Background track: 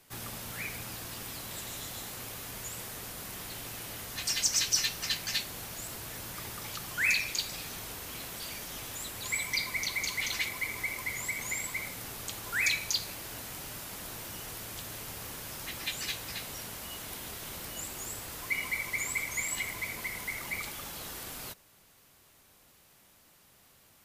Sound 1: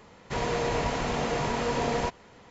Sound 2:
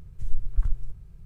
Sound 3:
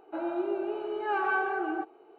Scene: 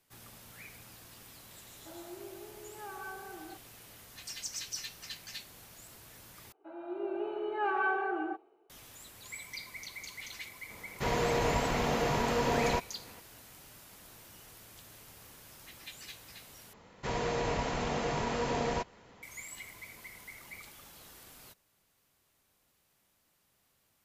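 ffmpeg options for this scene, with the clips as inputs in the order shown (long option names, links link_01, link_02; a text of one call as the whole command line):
ffmpeg -i bed.wav -i cue0.wav -i cue1.wav -i cue2.wav -filter_complex "[3:a]asplit=2[link_01][link_02];[1:a]asplit=2[link_03][link_04];[0:a]volume=-12dB[link_05];[link_02]dynaudnorm=framelen=140:gausssize=7:maxgain=13dB[link_06];[link_05]asplit=3[link_07][link_08][link_09];[link_07]atrim=end=6.524[link_10];[link_06]atrim=end=2.18,asetpts=PTS-STARTPTS,volume=-15dB[link_11];[link_08]atrim=start=8.696:end=16.734[link_12];[link_04]atrim=end=2.5,asetpts=PTS-STARTPTS,volume=-4.5dB[link_13];[link_09]atrim=start=19.226[link_14];[link_01]atrim=end=2.18,asetpts=PTS-STARTPTS,volume=-16dB,afade=type=in:duration=0.004:curve=hsin,afade=type=out:start_time=2.176:duration=0.004:curve=hsin,adelay=1730[link_15];[link_03]atrim=end=2.5,asetpts=PTS-STARTPTS,volume=-1.5dB,afade=type=in:duration=0.004:curve=hsin,afade=type=out:start_time=2.496:duration=0.004:curve=hsin,adelay=10700[link_16];[link_10][link_11]acrossfade=duration=0.004:curve1=hsin:curve2=hsin[link_17];[link_17][link_12]acrossfade=duration=0.004:curve1=hsin:curve2=hsin[link_18];[link_18][link_13]acrossfade=duration=0.004:curve1=hsin:curve2=hsin[link_19];[link_19][link_14]acrossfade=duration=0.004:curve1=hsin:curve2=hsin[link_20];[link_20][link_15][link_16]amix=inputs=3:normalize=0" out.wav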